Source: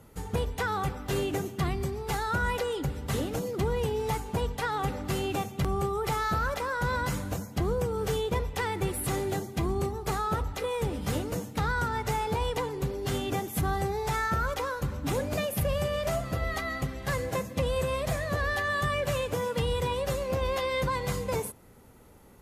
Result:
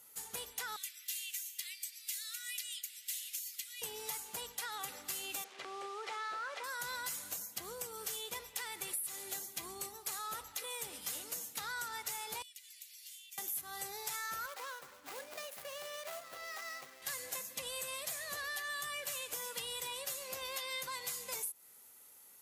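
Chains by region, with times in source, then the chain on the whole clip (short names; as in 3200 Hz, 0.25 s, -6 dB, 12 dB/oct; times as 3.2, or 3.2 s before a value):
0.76–3.82 steep high-pass 2000 Hz + upward compressor, threshold -49 dBFS
5.44–6.64 delta modulation 64 kbps, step -36 dBFS + LPF 2700 Hz + resonant low shelf 240 Hz -14 dB, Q 1.5
12.42–13.38 steep high-pass 2100 Hz + compressor, threshold -53 dBFS
14.46–17.02 median filter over 15 samples + tone controls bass -14 dB, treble -5 dB
whole clip: differentiator; compressor 10:1, threshold -42 dBFS; gain +5.5 dB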